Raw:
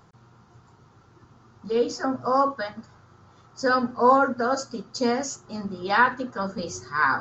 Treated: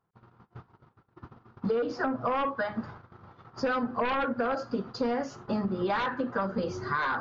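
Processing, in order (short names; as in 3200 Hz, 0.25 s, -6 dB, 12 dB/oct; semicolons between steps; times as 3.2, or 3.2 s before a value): low shelf 180 Hz -4 dB; in parallel at -3.5 dB: sine folder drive 12 dB, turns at -6.5 dBFS; on the sum: compressor 20:1, threshold -24 dBFS, peak gain reduction 15.5 dB; gate -38 dBFS, range -35 dB; Gaussian blur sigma 2.5 samples; gain -1.5 dB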